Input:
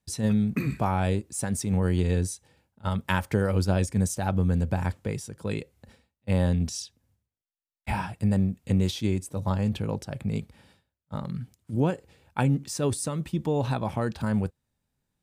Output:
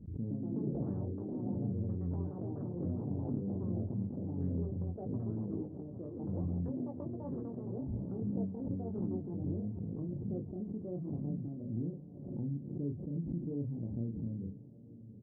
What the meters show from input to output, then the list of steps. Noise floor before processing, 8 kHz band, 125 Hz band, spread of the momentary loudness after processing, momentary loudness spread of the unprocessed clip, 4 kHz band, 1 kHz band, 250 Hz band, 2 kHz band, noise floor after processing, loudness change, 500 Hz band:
under -85 dBFS, under -40 dB, -10.0 dB, 5 LU, 10 LU, under -40 dB, -22.5 dB, -8.0 dB, under -40 dB, -50 dBFS, -10.5 dB, -12.0 dB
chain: inverse Chebyshev low-pass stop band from 1.9 kHz, stop band 80 dB; bass shelf 110 Hz -8.5 dB; hum notches 50/100/150/200 Hz; compression, threshold -32 dBFS, peak gain reduction 9.5 dB; wow and flutter 19 cents; doubling 35 ms -4.5 dB; ever faster or slower copies 155 ms, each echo +4 st, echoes 3; echo that smears into a reverb 835 ms, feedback 47%, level -15 dB; swell ahead of each attack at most 51 dB/s; trim -3.5 dB

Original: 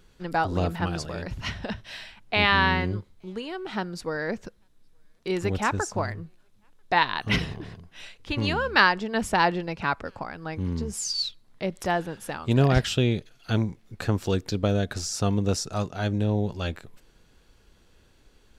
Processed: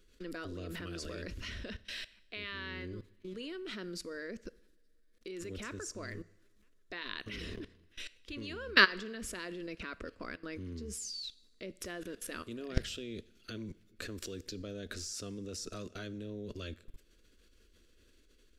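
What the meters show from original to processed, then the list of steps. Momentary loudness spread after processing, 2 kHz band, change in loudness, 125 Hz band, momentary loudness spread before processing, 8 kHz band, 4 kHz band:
9 LU, -8.5 dB, -12.0 dB, -19.5 dB, 15 LU, -9.0 dB, -8.5 dB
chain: static phaser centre 340 Hz, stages 4; level held to a coarse grid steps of 22 dB; two-slope reverb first 0.78 s, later 2.7 s, from -18 dB, DRR 18 dB; trim +2 dB

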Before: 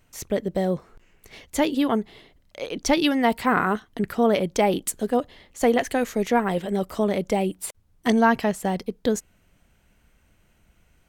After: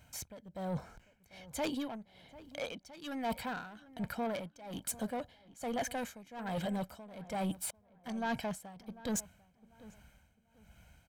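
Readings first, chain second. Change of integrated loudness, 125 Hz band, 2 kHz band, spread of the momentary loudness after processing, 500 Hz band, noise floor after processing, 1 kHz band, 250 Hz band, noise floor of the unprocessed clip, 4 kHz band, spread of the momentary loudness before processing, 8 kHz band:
-16.0 dB, -11.5 dB, -15.5 dB, 16 LU, -17.5 dB, -70 dBFS, -16.0 dB, -16.0 dB, -63 dBFS, -13.5 dB, 9 LU, -9.0 dB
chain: high-pass 51 Hz; comb 1.3 ms, depth 67%; reverse; compression 12:1, threshold -27 dBFS, peak gain reduction 16.5 dB; reverse; saturation -29.5 dBFS, distortion -12 dB; tremolo 1.2 Hz, depth 88%; on a send: filtered feedback delay 745 ms, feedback 28%, low-pass 1.9 kHz, level -18 dB

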